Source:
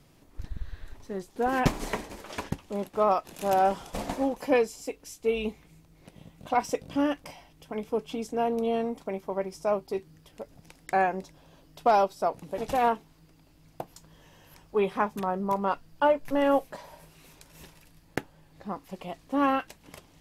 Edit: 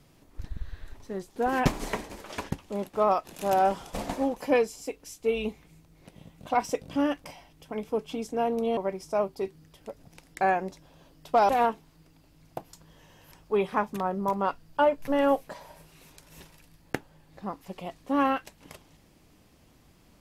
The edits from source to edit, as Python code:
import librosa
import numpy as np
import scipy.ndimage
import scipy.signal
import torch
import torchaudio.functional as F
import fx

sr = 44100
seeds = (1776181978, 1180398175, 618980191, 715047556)

y = fx.edit(x, sr, fx.cut(start_s=8.77, length_s=0.52),
    fx.cut(start_s=12.01, length_s=0.71), tone=tone)